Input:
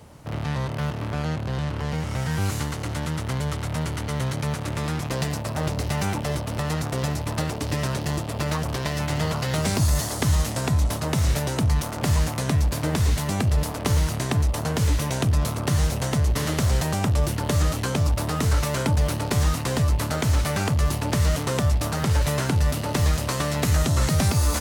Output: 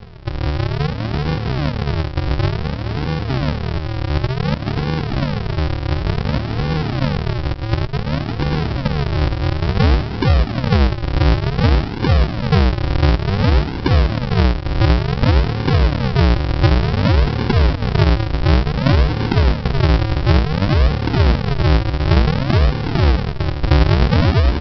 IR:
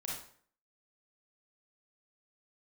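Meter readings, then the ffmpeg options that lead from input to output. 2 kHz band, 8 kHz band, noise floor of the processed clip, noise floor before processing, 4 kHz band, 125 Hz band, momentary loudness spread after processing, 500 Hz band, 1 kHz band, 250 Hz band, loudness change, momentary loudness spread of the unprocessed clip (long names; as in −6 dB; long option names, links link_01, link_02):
+6.0 dB, below −15 dB, −25 dBFS, −30 dBFS, +5.0 dB, +7.0 dB, 6 LU, +7.0 dB, +6.0 dB, +7.5 dB, +6.5 dB, 5 LU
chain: -af "lowpass=frequency=1900:width=0.5412,lowpass=frequency=1900:width=1.3066,acompressor=mode=upward:threshold=-39dB:ratio=2.5,aresample=11025,acrusher=samples=34:mix=1:aa=0.000001:lfo=1:lforange=34:lforate=0.56,aresample=44100,volume=7.5dB"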